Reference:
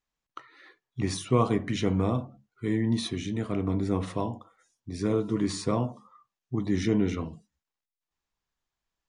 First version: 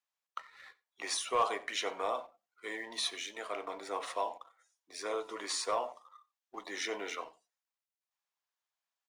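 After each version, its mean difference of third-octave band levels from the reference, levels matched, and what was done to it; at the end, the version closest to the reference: 12.5 dB: high-pass 580 Hz 24 dB/octave; waveshaping leveller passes 1; on a send: delay 91 ms -22 dB; on the sum: trim -2.5 dB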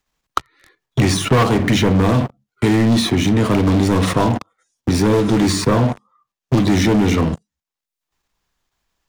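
7.5 dB: in parallel at +1.5 dB: level held to a coarse grid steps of 22 dB; on the sum: waveshaping leveller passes 5; three bands compressed up and down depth 70%; trim -3.5 dB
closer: second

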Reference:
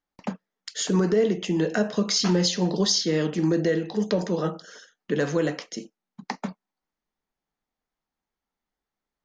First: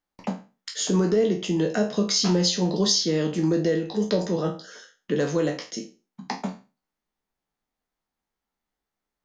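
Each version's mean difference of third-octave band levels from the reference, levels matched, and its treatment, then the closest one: 2.0 dB: spectral sustain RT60 0.31 s; dynamic bell 1.7 kHz, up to -5 dB, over -41 dBFS, Q 1.2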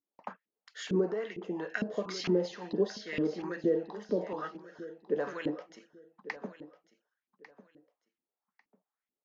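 6.5 dB: LFO band-pass saw up 2.2 Hz 260–2700 Hz; on a send: feedback delay 1147 ms, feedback 23%, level -16 dB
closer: first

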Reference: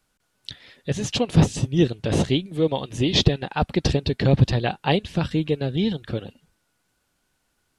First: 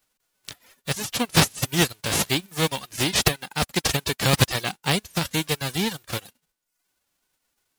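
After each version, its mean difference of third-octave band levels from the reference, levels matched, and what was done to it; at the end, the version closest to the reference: 11.5 dB: formants flattened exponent 0.3; reverb removal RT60 0.71 s; trim -2 dB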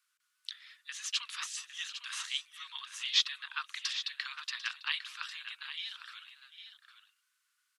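21.0 dB: steep high-pass 1.1 kHz 72 dB/octave; on a send: multi-tap echo 745/805 ms -17/-11 dB; on the sum: trim -5.5 dB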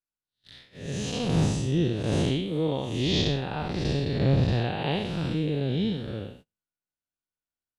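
6.0 dB: spectral blur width 198 ms; gate -48 dBFS, range -27 dB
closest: third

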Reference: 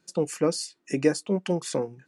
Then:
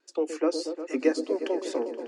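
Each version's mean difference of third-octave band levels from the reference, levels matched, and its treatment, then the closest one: 9.0 dB: steep high-pass 250 Hz 96 dB/octave; vibrato 4.8 Hz 75 cents; distance through air 86 m; delay with an opening low-pass 119 ms, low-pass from 400 Hz, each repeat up 1 oct, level -6 dB; trim -1 dB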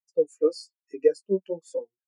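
12.5 dB: high-pass 480 Hz 6 dB/octave; treble shelf 2.9 kHz +7 dB; flange 1.1 Hz, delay 8.9 ms, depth 6.9 ms, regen -16%; spectral contrast expander 2.5:1; trim +8 dB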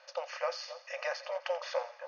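16.5 dB: spectral levelling over time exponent 0.6; brick-wall FIR band-pass 510–6700 Hz; distance through air 180 m; two-band feedback delay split 1.3 kHz, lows 271 ms, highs 86 ms, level -13 dB; trim -2.5 dB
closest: first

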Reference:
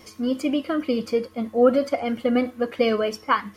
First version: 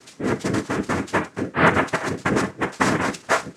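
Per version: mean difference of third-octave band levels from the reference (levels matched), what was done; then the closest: 10.5 dB: noise-vocoded speech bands 3; gated-style reverb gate 90 ms falling, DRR 9.5 dB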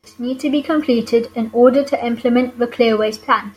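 1.0 dB: gate with hold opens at -38 dBFS; level rider gain up to 8 dB; trim +1 dB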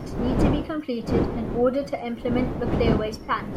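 7.0 dB: wind noise 340 Hz -22 dBFS; reverse; upward compressor, threshold -22 dBFS; reverse; trim -4.5 dB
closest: second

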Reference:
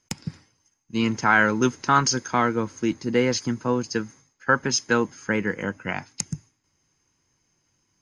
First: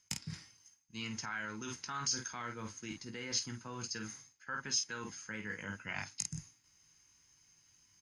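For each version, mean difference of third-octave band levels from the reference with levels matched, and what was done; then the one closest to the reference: 7.0 dB: early reflections 19 ms -8.5 dB, 50 ms -10 dB; peak limiter -14 dBFS, peak gain reduction 10 dB; reverse; compression 5:1, threshold -35 dBFS, peak gain reduction 14 dB; reverse; amplifier tone stack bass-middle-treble 5-5-5; trim +10 dB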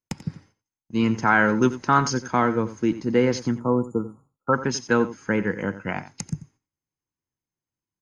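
4.0 dB: spectral selection erased 3.58–4.53 s, 1.4–6.8 kHz; gate -55 dBFS, range -21 dB; treble shelf 2.2 kHz -9.5 dB; on a send: delay 89 ms -14.5 dB; on the sum: trim +2 dB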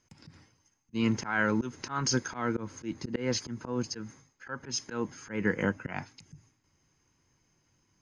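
5.0 dB: treble shelf 5.1 kHz -6.5 dB; compression 6:1, threshold -21 dBFS, peak gain reduction 8.5 dB; bass shelf 180 Hz +3 dB; slow attack 174 ms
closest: second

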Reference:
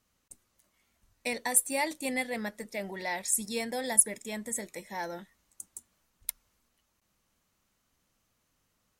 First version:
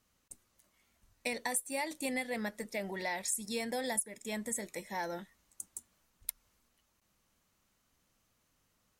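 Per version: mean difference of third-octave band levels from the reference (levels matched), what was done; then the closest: 3.5 dB: compression 5:1, threshold -32 dBFS, peak gain reduction 15.5 dB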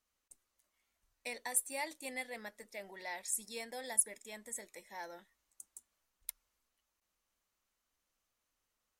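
2.5 dB: peaking EQ 140 Hz -13 dB 1.9 oct; trim -8.5 dB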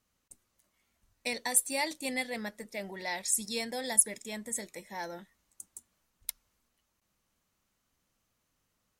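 1.0 dB: dynamic bell 4.6 kHz, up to +7 dB, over -47 dBFS, Q 1; trim -3 dB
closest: third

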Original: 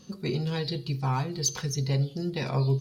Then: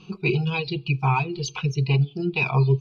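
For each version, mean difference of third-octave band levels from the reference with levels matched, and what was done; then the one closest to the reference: 6.5 dB: reverb removal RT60 1.3 s; resonant low-pass 2.5 kHz, resonance Q 12; static phaser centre 370 Hz, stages 8; trim +8 dB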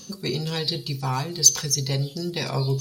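4.0 dB: tone controls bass -3 dB, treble +12 dB; reverse; upward compressor, threshold -30 dBFS; reverse; trim +3 dB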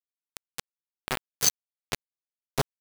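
19.0 dB: phase randomisation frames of 100 ms; bass shelf 370 Hz -10 dB; bit crusher 4-bit; trim +4 dB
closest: second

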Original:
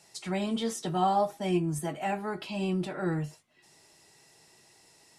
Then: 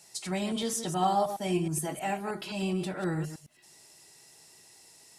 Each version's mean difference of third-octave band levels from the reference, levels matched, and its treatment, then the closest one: 3.5 dB: chunks repeated in reverse 105 ms, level -9 dB; treble shelf 5.5 kHz +10.5 dB; trim -1.5 dB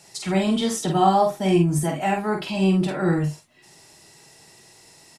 2.0 dB: tone controls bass +3 dB, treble +1 dB; doubling 47 ms -4 dB; trim +7 dB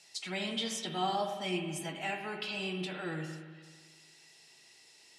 6.0 dB: frequency weighting D; spring tank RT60 1.6 s, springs 38/49/57 ms, chirp 75 ms, DRR 4.5 dB; trim -7.5 dB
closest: second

